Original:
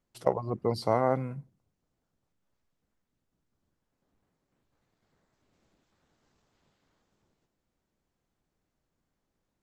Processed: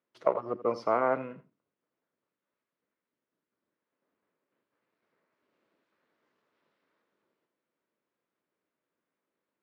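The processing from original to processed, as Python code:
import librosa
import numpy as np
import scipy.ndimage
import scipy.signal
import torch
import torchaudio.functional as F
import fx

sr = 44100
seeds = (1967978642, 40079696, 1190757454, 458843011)

p1 = np.sign(x) * np.maximum(np.abs(x) - 10.0 ** (-45.5 / 20.0), 0.0)
p2 = x + F.gain(torch.from_numpy(p1), -8.5).numpy()
p3 = fx.formant_shift(p2, sr, semitones=2)
p4 = fx.bandpass_edges(p3, sr, low_hz=340.0, high_hz=2700.0)
p5 = fx.peak_eq(p4, sr, hz=770.0, db=-9.5, octaves=0.28)
y = p5 + fx.echo_single(p5, sr, ms=84, db=-15.5, dry=0)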